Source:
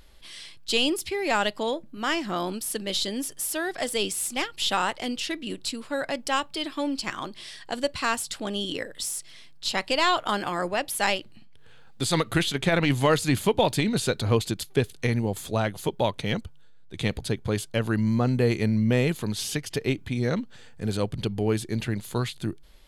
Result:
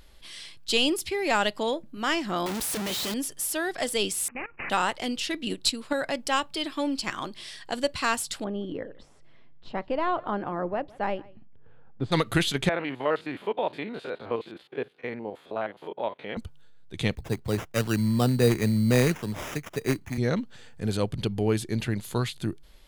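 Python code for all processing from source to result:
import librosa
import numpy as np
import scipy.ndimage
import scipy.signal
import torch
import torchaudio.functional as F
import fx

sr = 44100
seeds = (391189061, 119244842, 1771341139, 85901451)

y = fx.chain(x, sr, fx.clip_1bit(),
    fx.highpass(hz=42.0, slope=12), at=(2.46, 3.14))
y = fx.chain(y, sr, fx.level_steps(step_db=17),
    fx.resample_bad(factor=8, down='none', up='filtered'), at=(4.28, 4.7))
y = fx.chain(y, sr, fx.peak_eq(hz=4000.0, db=3.0, octaves=0.22),
    fx.transient(attack_db=7, sustain_db=-2), at=(5.34, 5.93))
y = fx.chain(y, sr, fx.bessel_lowpass(hz=860.0, order=2),
    fx.echo_single(ms=161, db=-23.5), at=(8.44, 12.12))
y = fx.chain(y, sr, fx.spec_steps(hold_ms=50),
    fx.highpass(hz=410.0, slope=12),
    fx.air_absorb(metres=480.0), at=(12.69, 16.37))
y = fx.chain(y, sr, fx.sample_hold(seeds[0], rate_hz=4300.0, jitter_pct=0),
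    fx.band_widen(depth_pct=70), at=(17.15, 20.18))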